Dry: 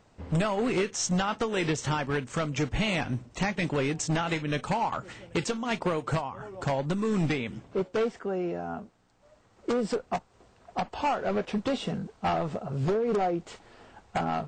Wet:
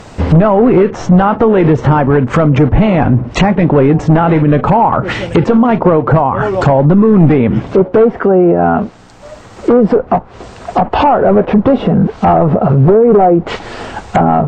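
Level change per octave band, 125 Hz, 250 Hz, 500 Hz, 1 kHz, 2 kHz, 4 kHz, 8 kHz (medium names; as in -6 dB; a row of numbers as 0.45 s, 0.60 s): +21.5 dB, +21.0 dB, +20.0 dB, +19.0 dB, +12.0 dB, +7.5 dB, no reading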